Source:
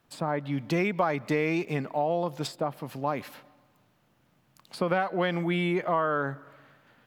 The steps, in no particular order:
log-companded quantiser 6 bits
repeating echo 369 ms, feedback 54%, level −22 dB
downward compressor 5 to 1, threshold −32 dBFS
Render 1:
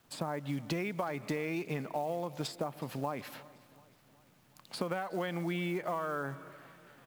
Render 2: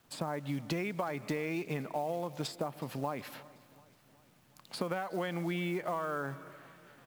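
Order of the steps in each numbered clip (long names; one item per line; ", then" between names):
log-companded quantiser, then downward compressor, then repeating echo
downward compressor, then repeating echo, then log-companded quantiser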